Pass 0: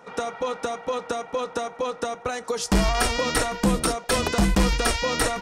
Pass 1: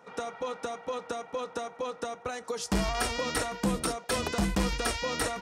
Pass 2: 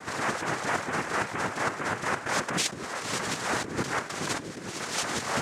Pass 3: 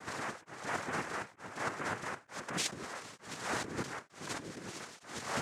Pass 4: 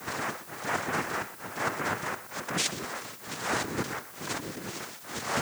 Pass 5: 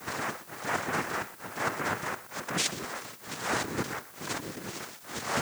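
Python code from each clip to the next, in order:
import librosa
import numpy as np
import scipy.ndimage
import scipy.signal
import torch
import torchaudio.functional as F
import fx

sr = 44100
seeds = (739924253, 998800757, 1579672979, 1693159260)

y1 = scipy.signal.sosfilt(scipy.signal.butter(2, 50.0, 'highpass', fs=sr, output='sos'), x)
y1 = y1 * librosa.db_to_amplitude(-7.0)
y2 = fx.over_compress(y1, sr, threshold_db=-38.0, ratio=-1.0)
y2 = fx.noise_vocoder(y2, sr, seeds[0], bands=3)
y2 = y2 * librosa.db_to_amplitude(7.5)
y3 = y2 * np.abs(np.cos(np.pi * 1.1 * np.arange(len(y2)) / sr))
y3 = y3 * librosa.db_to_amplitude(-6.5)
y4 = fx.dmg_noise_colour(y3, sr, seeds[1], colour='blue', level_db=-56.0)
y4 = y4 + 10.0 ** (-15.0 / 20.0) * np.pad(y4, (int(122 * sr / 1000.0), 0))[:len(y4)]
y4 = y4 * librosa.db_to_amplitude(6.5)
y5 = np.sign(y4) * np.maximum(np.abs(y4) - 10.0 ** (-54.0 / 20.0), 0.0)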